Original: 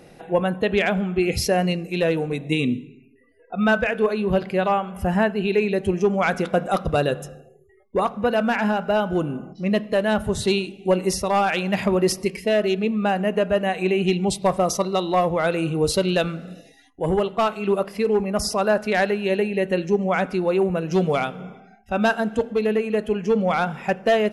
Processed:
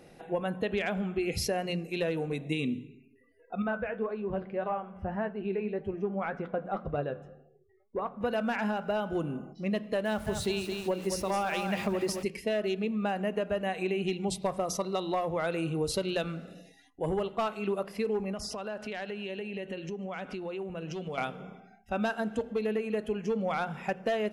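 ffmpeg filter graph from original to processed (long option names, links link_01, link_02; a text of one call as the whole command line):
ffmpeg -i in.wav -filter_complex "[0:a]asettb=1/sr,asplit=3[link_01][link_02][link_03];[link_01]atrim=end=3.624[link_04];[link_02]atrim=start=3.62:end=8.21,asetpts=PTS-STARTPTS,afade=type=in:duration=0.004:curve=qsin,afade=type=out:start_time=4.586:duration=0.004:curve=qsin,lowpass=1700,flanger=delay=6.2:depth=5.1:regen=59:speed=1.8:shape=triangular[link_05];[link_03]atrim=start=8.206[link_06];[link_04][link_05]acrossfade=duration=0.004:curve1=hsin:curve2=qsin[link_07];[link_07][link_06]acrossfade=duration=0.004:curve1=qsin:curve2=hsin,asettb=1/sr,asplit=3[link_08][link_09][link_10];[link_08]atrim=end=10.054[link_11];[link_09]atrim=start=10.05:end=12.23,asetpts=PTS-STARTPTS,afade=type=in:duration=0.004:curve=qsin,afade=type=out:start_time=2.176:duration=0.004:curve=qsin,aecho=1:1:216|432|648|864:0.376|0.128|0.0434|0.0148,atrim=end_sample=96138,aeval=exprs='val(0)*gte(abs(val(0)),0.0168)':channel_layout=same[link_12];[link_10]atrim=start=12.226[link_13];[link_11][link_12]acrossfade=duration=0.004:curve1=hsin:curve2=qsin[link_14];[link_14][link_13]acrossfade=duration=0.004:curve1=qsin:curve2=hsin,asettb=1/sr,asplit=3[link_15][link_16][link_17];[link_15]atrim=end=18.334[link_18];[link_16]atrim=start=18.33:end=21.18,asetpts=PTS-STARTPTS,afade=type=in:duration=0.004:curve=qsin,afade=type=out:start_time=2.846:duration=0.004:curve=qsin,lowpass=8600,equalizer=frequency=3000:width=3.8:gain=8,acompressor=threshold=-27dB:ratio=8:attack=3.2:release=140:knee=1:detection=peak[link_19];[link_17]atrim=start=21.176[link_20];[link_18][link_19]acrossfade=duration=0.004:curve1=hsin:curve2=qsin[link_21];[link_21][link_20]acrossfade=duration=0.004:curve1=qsin:curve2=hsin,bandreject=frequency=60:width_type=h:width=6,bandreject=frequency=120:width_type=h:width=6,bandreject=frequency=180:width_type=h:width=6,acompressor=threshold=-20dB:ratio=6,volume=-6.5dB" out.wav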